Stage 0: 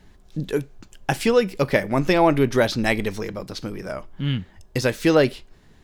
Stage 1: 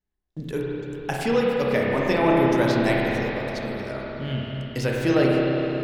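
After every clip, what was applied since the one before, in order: spring tank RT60 4 s, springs 30/51 ms, chirp 25 ms, DRR -4 dB; gate -33 dBFS, range -29 dB; gain -6.5 dB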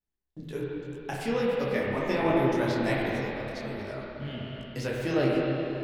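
detuned doubles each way 45 cents; gain -2.5 dB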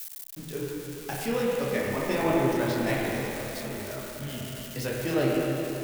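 switching spikes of -29.5 dBFS

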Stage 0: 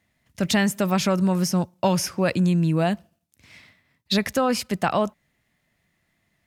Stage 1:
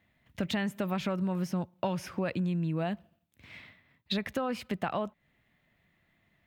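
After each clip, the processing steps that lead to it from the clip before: band shelf 7700 Hz -12 dB; compressor 3:1, threshold -32 dBFS, peak gain reduction 11.5 dB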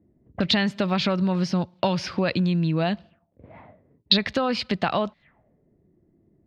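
envelope low-pass 340–4500 Hz up, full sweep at -36.5 dBFS; gain +8 dB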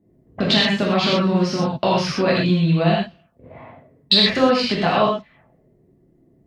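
non-linear reverb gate 0.15 s flat, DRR -5.5 dB; added harmonics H 4 -36 dB, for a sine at -2.5 dBFS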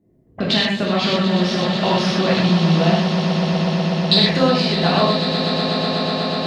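swelling echo 0.123 s, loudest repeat 8, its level -12 dB; gain -1 dB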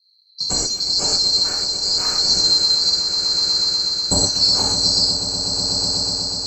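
band-swap scrambler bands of 4000 Hz; tremolo 0.85 Hz, depth 29%

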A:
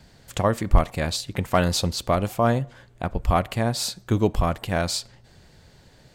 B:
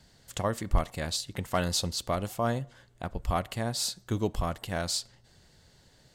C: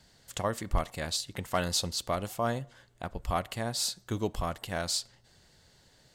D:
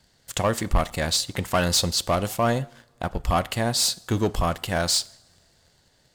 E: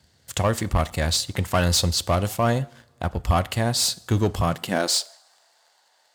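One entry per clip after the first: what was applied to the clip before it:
bell 7900 Hz +6 dB 2.7 oct; notch 2400 Hz, Q 14; gain -8.5 dB
low shelf 370 Hz -4 dB
sample leveller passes 2; two-slope reverb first 0.69 s, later 2.9 s, from -19 dB, DRR 20 dB; gain +2.5 dB
high-pass sweep 75 Hz -> 830 Hz, 4.34–5.19

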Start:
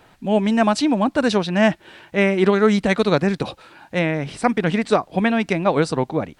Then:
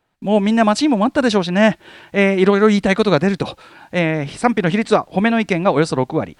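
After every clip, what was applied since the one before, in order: gate with hold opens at -41 dBFS; gain +3 dB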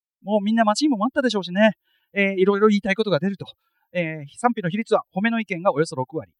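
per-bin expansion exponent 2; low shelf 110 Hz -11.5 dB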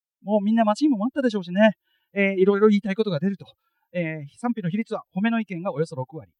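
harmonic-percussive split percussive -11 dB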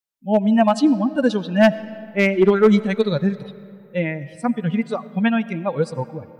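hard clip -11 dBFS, distortion -21 dB; on a send at -16.5 dB: reverb RT60 2.7 s, pre-delay 45 ms; on the sum: gain +4 dB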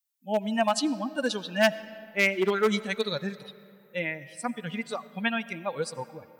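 tilt +3.5 dB/oct; gain -6 dB

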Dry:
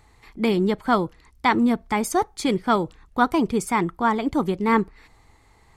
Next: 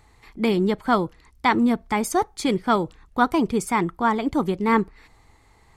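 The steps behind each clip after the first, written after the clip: nothing audible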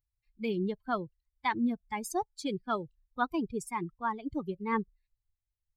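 per-bin expansion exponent 2; gain -8 dB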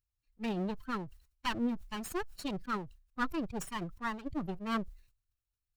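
minimum comb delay 0.72 ms; sustainer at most 120 dB/s; gain -2 dB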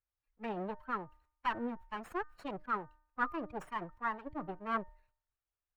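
three-band isolator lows -12 dB, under 450 Hz, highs -22 dB, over 2100 Hz; de-hum 304.3 Hz, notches 6; gain +3 dB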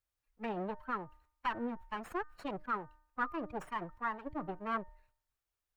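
compressor 1.5:1, threshold -41 dBFS, peak gain reduction 5.5 dB; gain +3 dB

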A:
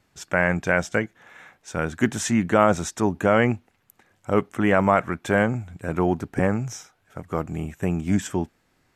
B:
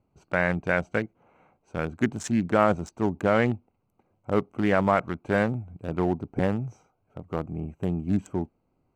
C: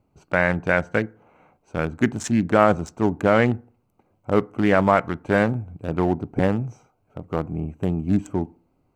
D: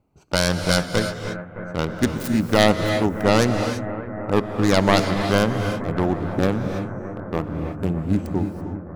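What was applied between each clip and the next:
Wiener smoothing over 25 samples; gain -3 dB
FDN reverb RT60 0.44 s, low-frequency decay 1.05×, high-frequency decay 0.4×, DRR 19.5 dB; gain +4.5 dB
tracing distortion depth 0.49 ms; analogue delay 0.308 s, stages 4096, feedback 83%, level -13.5 dB; non-linear reverb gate 0.36 s rising, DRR 6.5 dB; gain -1 dB

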